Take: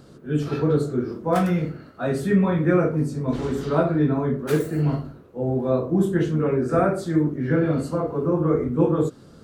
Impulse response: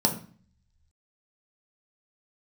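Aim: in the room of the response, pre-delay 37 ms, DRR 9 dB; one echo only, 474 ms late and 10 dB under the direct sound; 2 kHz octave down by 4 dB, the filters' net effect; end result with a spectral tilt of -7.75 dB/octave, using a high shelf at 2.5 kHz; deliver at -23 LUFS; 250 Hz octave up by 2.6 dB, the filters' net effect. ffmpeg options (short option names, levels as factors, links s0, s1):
-filter_complex "[0:a]equalizer=f=250:t=o:g=4,equalizer=f=2000:t=o:g=-3.5,highshelf=f=2500:g=-5,aecho=1:1:474:0.316,asplit=2[s0][s1];[1:a]atrim=start_sample=2205,adelay=37[s2];[s1][s2]afir=irnorm=-1:irlink=0,volume=0.1[s3];[s0][s3]amix=inputs=2:normalize=0,volume=0.531"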